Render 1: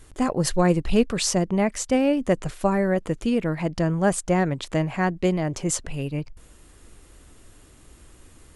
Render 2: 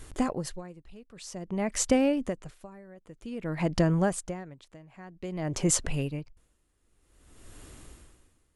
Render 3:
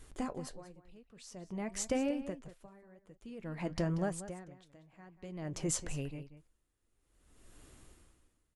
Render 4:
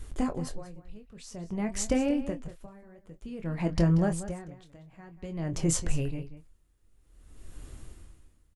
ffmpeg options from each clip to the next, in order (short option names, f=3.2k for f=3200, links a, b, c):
-af "acompressor=threshold=-22dB:ratio=6,aeval=exprs='val(0)*pow(10,-26*(0.5-0.5*cos(2*PI*0.52*n/s))/20)':c=same,volume=3dB"
-filter_complex "[0:a]flanger=delay=3.9:depth=5.6:regen=-69:speed=0.95:shape=triangular,asplit=2[a][b];[b]adelay=186.6,volume=-13dB,highshelf=f=4k:g=-4.2[c];[a][c]amix=inputs=2:normalize=0,volume=-5dB"
-filter_complex "[0:a]lowshelf=f=140:g=11.5,asplit=2[a][b];[b]adelay=24,volume=-9dB[c];[a][c]amix=inputs=2:normalize=0,volume=4.5dB"